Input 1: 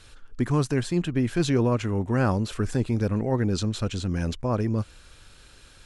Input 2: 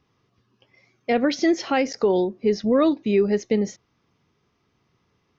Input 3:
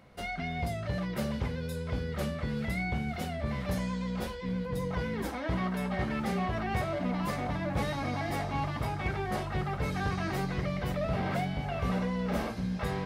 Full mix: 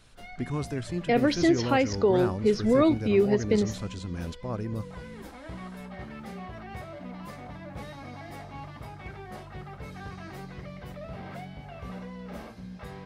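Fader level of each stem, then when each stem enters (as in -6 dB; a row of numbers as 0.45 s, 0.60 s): -8.0 dB, -2.5 dB, -9.0 dB; 0.00 s, 0.00 s, 0.00 s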